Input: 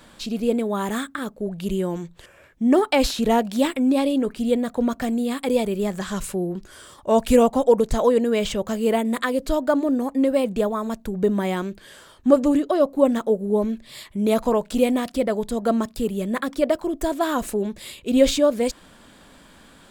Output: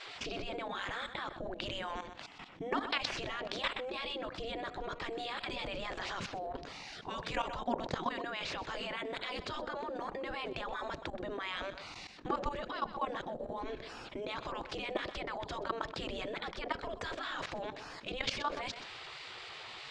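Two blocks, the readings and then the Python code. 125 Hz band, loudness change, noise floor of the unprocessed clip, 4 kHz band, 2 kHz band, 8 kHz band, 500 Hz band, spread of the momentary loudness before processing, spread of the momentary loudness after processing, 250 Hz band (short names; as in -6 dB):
-15.5 dB, -17.0 dB, -50 dBFS, -6.5 dB, -6.0 dB, -19.0 dB, -20.0 dB, 11 LU, 8 LU, -24.0 dB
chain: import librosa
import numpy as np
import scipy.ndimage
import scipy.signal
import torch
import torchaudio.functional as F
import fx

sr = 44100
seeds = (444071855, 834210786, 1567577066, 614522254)

p1 = fx.spec_gate(x, sr, threshold_db=-15, keep='weak')
p2 = scipy.signal.sosfilt(scipy.signal.butter(4, 4900.0, 'lowpass', fs=sr, output='sos'), p1)
p3 = fx.high_shelf(p2, sr, hz=2700.0, db=-4.5)
p4 = fx.level_steps(p3, sr, step_db=16)
p5 = p4 + fx.echo_single(p4, sr, ms=126, db=-18.5, dry=0)
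y = fx.env_flatten(p5, sr, amount_pct=50)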